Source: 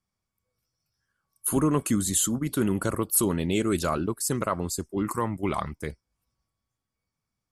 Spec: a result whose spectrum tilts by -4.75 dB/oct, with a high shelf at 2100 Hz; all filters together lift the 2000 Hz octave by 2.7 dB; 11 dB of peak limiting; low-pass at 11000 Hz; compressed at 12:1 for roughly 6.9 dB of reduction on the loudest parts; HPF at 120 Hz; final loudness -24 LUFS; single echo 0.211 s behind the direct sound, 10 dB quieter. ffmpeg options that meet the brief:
-af "highpass=120,lowpass=11k,equalizer=f=2k:t=o:g=8.5,highshelf=f=2.1k:g=-8.5,acompressor=threshold=-26dB:ratio=12,alimiter=level_in=1dB:limit=-24dB:level=0:latency=1,volume=-1dB,aecho=1:1:211:0.316,volume=11dB"

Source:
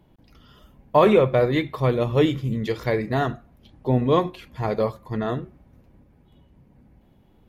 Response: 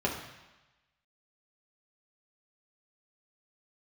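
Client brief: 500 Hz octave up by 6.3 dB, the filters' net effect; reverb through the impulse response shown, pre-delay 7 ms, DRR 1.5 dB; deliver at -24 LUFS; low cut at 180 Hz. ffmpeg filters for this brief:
-filter_complex "[0:a]highpass=180,equalizer=f=500:t=o:g=7.5,asplit=2[a][b];[1:a]atrim=start_sample=2205,adelay=7[c];[b][c]afir=irnorm=-1:irlink=0,volume=-10.5dB[d];[a][d]amix=inputs=2:normalize=0,volume=-10dB"

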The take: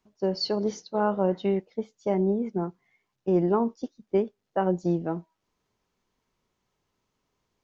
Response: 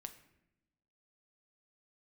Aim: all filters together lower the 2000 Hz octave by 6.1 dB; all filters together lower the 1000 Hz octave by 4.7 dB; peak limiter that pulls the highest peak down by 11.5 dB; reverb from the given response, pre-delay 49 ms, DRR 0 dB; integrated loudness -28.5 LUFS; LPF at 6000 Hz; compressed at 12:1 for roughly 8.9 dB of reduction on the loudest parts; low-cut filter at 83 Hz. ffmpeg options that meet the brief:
-filter_complex "[0:a]highpass=83,lowpass=6k,equalizer=f=1k:t=o:g=-5,equalizer=f=2k:t=o:g=-6.5,acompressor=threshold=-28dB:ratio=12,alimiter=level_in=5.5dB:limit=-24dB:level=0:latency=1,volume=-5.5dB,asplit=2[a][b];[1:a]atrim=start_sample=2205,adelay=49[c];[b][c]afir=irnorm=-1:irlink=0,volume=5dB[d];[a][d]amix=inputs=2:normalize=0,volume=8dB"

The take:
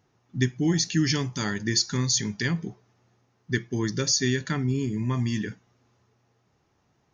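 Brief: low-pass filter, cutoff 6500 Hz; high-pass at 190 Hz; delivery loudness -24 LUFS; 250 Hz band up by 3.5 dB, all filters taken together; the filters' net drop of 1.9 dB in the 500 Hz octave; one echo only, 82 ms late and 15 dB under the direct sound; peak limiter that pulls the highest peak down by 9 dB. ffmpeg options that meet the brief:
-af "highpass=190,lowpass=6.5k,equalizer=f=250:t=o:g=8.5,equalizer=f=500:t=o:g=-8.5,alimiter=limit=-18dB:level=0:latency=1,aecho=1:1:82:0.178,volume=4dB"

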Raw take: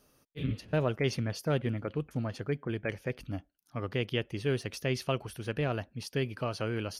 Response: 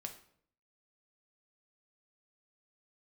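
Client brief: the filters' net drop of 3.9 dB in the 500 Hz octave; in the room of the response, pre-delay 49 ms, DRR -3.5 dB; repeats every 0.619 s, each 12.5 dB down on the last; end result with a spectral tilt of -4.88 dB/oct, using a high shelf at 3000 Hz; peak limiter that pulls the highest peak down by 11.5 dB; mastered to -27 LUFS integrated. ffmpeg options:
-filter_complex "[0:a]equalizer=f=500:t=o:g=-5,highshelf=f=3k:g=4.5,alimiter=level_in=3dB:limit=-24dB:level=0:latency=1,volume=-3dB,aecho=1:1:619|1238|1857:0.237|0.0569|0.0137,asplit=2[a][b];[1:a]atrim=start_sample=2205,adelay=49[c];[b][c]afir=irnorm=-1:irlink=0,volume=6.5dB[d];[a][d]amix=inputs=2:normalize=0,volume=7dB"

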